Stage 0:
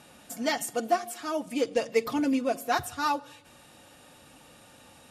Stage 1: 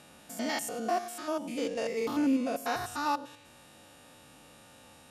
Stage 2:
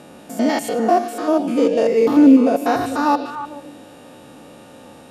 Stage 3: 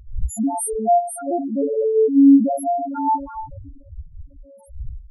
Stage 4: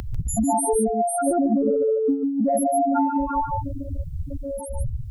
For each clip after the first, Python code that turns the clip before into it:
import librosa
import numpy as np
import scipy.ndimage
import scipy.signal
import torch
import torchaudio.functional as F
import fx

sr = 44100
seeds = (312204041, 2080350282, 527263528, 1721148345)

y1 = fx.spec_steps(x, sr, hold_ms=100)
y2 = fx.peak_eq(y1, sr, hz=350.0, db=13.0, octaves=3.0)
y2 = fx.echo_stepped(y2, sr, ms=148, hz=3300.0, octaves=-1.4, feedback_pct=70, wet_db=-5.0)
y2 = F.gain(torch.from_numpy(y2), 5.0).numpy()
y3 = fx.freq_snap(y2, sr, grid_st=4)
y3 = fx.dmg_wind(y3, sr, seeds[0], corner_hz=86.0, level_db=-29.0)
y3 = fx.spec_topn(y3, sr, count=2)
y4 = fx.over_compress(y3, sr, threshold_db=-23.0, ratio=-1.0)
y4 = y4 + 10.0 ** (-6.5 / 20.0) * np.pad(y4, (int(145 * sr / 1000.0), 0))[:len(y4)]
y4 = fx.band_squash(y4, sr, depth_pct=70)